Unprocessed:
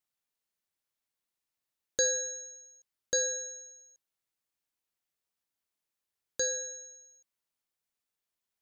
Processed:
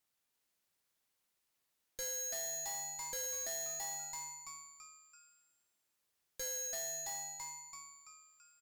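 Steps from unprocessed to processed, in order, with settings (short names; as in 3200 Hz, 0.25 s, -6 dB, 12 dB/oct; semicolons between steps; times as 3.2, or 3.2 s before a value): frequency-shifting echo 0.334 s, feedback 45%, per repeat +150 Hz, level -5 dB; tube stage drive 45 dB, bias 0.4; gain +6 dB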